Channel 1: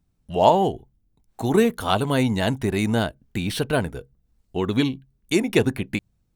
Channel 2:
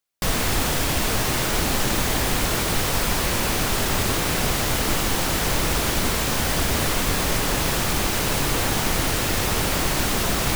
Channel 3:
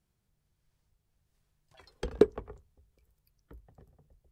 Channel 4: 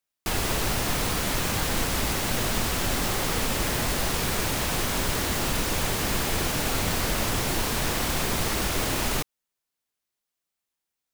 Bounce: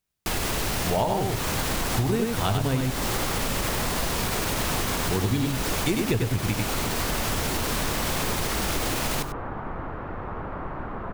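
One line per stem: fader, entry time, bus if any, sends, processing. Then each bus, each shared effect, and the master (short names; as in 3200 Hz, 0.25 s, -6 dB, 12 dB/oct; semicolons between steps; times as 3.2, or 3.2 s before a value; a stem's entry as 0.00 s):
-0.5 dB, 0.55 s, muted 2.81–4.97, no send, echo send -3.5 dB, bell 110 Hz +13 dB 0.92 oct
-2.5 dB, 0.80 s, no send, no echo send, ladder low-pass 1500 Hz, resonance 35%
-10.0 dB, 0.00 s, no send, no echo send, dry
+2.0 dB, 0.00 s, no send, echo send -14 dB, limiter -18 dBFS, peak gain reduction 6 dB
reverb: off
echo: echo 96 ms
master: compressor 6:1, threshold -21 dBFS, peak gain reduction 12 dB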